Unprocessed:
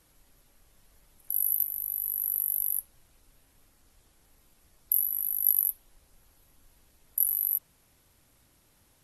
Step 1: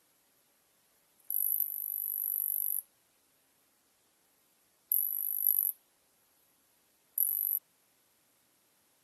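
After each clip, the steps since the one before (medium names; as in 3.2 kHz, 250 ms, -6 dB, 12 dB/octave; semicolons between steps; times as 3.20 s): Bessel high-pass 270 Hz, order 2; trim -4 dB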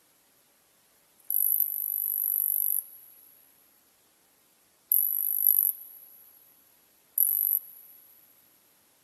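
plate-style reverb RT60 3.4 s, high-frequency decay 0.85×, DRR 19.5 dB; trim +6 dB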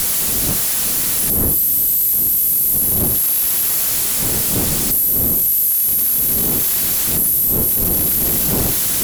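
zero-crossing glitches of -16 dBFS; wind noise 290 Hz -27 dBFS; valve stage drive 22 dB, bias 0.55; trim +8.5 dB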